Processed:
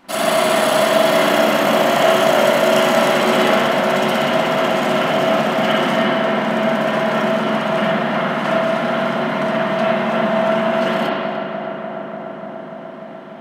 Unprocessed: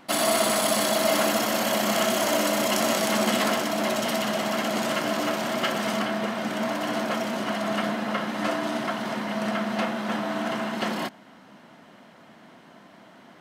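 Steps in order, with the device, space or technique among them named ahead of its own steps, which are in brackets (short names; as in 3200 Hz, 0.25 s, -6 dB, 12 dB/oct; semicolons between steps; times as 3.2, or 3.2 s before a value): dub delay into a spring reverb (darkening echo 0.295 s, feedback 83%, low-pass 2700 Hz, level -7.5 dB; spring tank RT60 1.4 s, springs 35/41/46 ms, chirp 75 ms, DRR -9 dB); gain -1 dB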